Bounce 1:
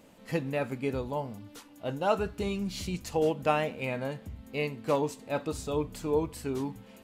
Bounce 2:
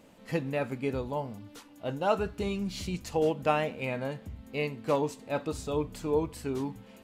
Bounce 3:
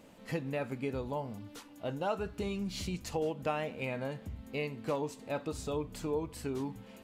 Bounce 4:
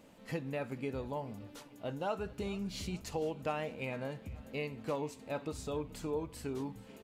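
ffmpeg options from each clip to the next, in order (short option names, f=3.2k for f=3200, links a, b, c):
-af "highshelf=f=8.4k:g=-4"
-af "acompressor=threshold=-35dB:ratio=2"
-af "aecho=1:1:436|872|1308|1744:0.0944|0.05|0.0265|0.0141,volume=-2.5dB"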